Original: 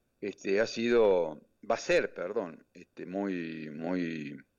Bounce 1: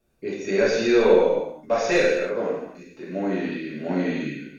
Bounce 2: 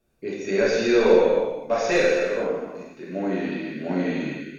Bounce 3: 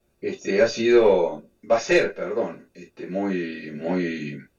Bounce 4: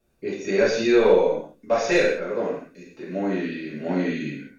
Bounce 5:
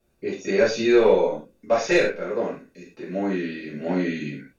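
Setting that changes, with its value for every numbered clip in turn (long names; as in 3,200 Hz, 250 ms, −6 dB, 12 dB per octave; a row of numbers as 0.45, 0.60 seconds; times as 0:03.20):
reverb whose tail is shaped and stops, gate: 350, 510, 80, 230, 140 milliseconds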